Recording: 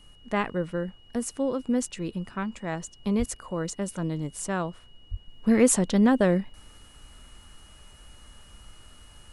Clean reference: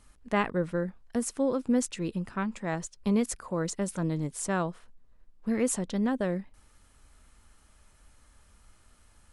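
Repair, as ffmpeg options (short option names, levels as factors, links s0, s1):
-filter_complex "[0:a]bandreject=f=2900:w=30,asplit=3[s0][s1][s2];[s0]afade=t=out:st=3.18:d=0.02[s3];[s1]highpass=f=140:w=0.5412,highpass=f=140:w=1.3066,afade=t=in:st=3.18:d=0.02,afade=t=out:st=3.3:d=0.02[s4];[s2]afade=t=in:st=3.3:d=0.02[s5];[s3][s4][s5]amix=inputs=3:normalize=0,asplit=3[s6][s7][s8];[s6]afade=t=out:st=5.1:d=0.02[s9];[s7]highpass=f=140:w=0.5412,highpass=f=140:w=1.3066,afade=t=in:st=5.1:d=0.02,afade=t=out:st=5.22:d=0.02[s10];[s8]afade=t=in:st=5.22:d=0.02[s11];[s9][s10][s11]amix=inputs=3:normalize=0,agate=range=0.0891:threshold=0.00631,asetnsamples=n=441:p=0,asendcmd='5.28 volume volume -8dB',volume=1"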